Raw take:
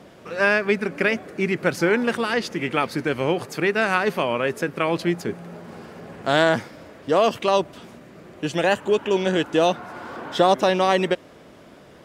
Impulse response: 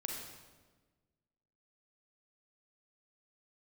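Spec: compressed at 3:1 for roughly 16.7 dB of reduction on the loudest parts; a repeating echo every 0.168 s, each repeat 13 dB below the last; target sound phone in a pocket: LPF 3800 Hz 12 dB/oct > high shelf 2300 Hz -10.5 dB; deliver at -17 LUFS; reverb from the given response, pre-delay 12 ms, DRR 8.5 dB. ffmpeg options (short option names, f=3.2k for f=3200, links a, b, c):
-filter_complex "[0:a]acompressor=threshold=-36dB:ratio=3,aecho=1:1:168|336|504:0.224|0.0493|0.0108,asplit=2[a][b];[1:a]atrim=start_sample=2205,adelay=12[c];[b][c]afir=irnorm=-1:irlink=0,volume=-9dB[d];[a][d]amix=inputs=2:normalize=0,lowpass=3.8k,highshelf=f=2.3k:g=-10.5,volume=19.5dB"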